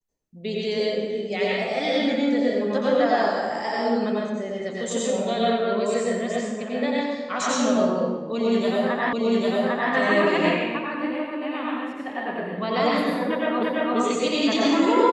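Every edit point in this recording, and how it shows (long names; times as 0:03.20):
0:09.13: the same again, the last 0.8 s
0:13.63: the same again, the last 0.34 s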